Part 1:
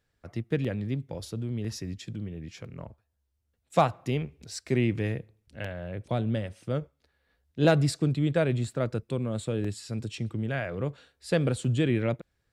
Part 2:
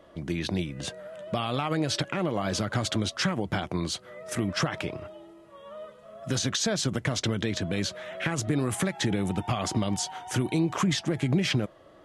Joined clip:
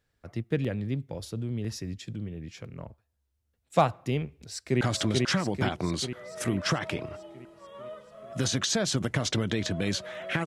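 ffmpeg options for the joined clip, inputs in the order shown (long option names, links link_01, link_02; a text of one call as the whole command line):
ffmpeg -i cue0.wav -i cue1.wav -filter_complex "[0:a]apad=whole_dur=10.46,atrim=end=10.46,atrim=end=4.812[link_01];[1:a]atrim=start=2.718:end=8.37[link_02];[link_01][link_02]acrossfade=duration=0.004:curve1=hsin:curve2=hsin,asplit=2[link_03][link_04];[link_04]afade=type=in:start_time=4.35:duration=0.01,afade=type=out:start_time=4.81:duration=0.01,aecho=0:1:440|880|1320|1760|2200|2640|3080|3520|3960:0.841395|0.504837|0.302902|0.181741|0.109045|0.0654269|0.0392561|0.0235537|0.0141322[link_05];[link_03][link_05]amix=inputs=2:normalize=0" out.wav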